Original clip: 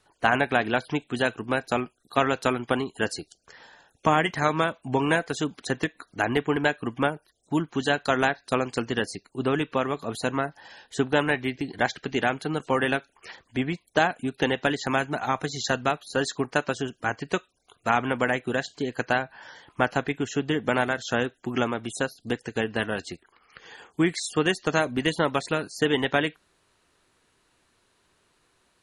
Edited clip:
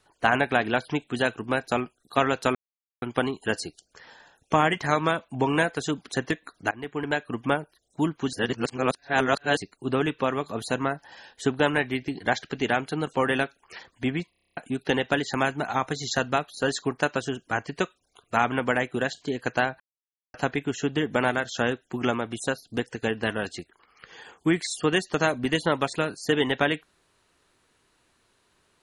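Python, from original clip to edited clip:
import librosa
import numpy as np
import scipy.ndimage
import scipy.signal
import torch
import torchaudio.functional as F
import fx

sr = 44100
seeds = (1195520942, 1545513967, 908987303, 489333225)

y = fx.edit(x, sr, fx.insert_silence(at_s=2.55, length_s=0.47),
    fx.fade_in_from(start_s=6.24, length_s=0.9, curve='qsin', floor_db=-23.0),
    fx.reverse_span(start_s=7.86, length_s=1.24),
    fx.stutter_over(start_s=13.83, slice_s=0.03, count=9),
    fx.silence(start_s=19.33, length_s=0.54), tone=tone)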